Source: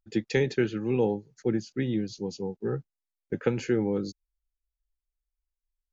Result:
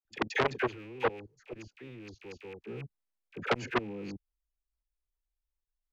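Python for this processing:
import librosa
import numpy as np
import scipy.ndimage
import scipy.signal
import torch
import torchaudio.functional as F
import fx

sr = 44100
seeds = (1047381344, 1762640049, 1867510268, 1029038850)

y = fx.rattle_buzz(x, sr, strikes_db=-40.0, level_db=-27.0)
y = fx.high_shelf(y, sr, hz=2100.0, db=-10.0)
y = fx.level_steps(y, sr, step_db=23)
y = fx.peak_eq(y, sr, hz=190.0, db=-14.0, octaves=1.1, at=(0.57, 2.57))
y = fx.dispersion(y, sr, late='lows', ms=53.0, hz=860.0)
y = fx.transformer_sat(y, sr, knee_hz=2200.0)
y = F.gain(torch.from_numpy(y), 6.5).numpy()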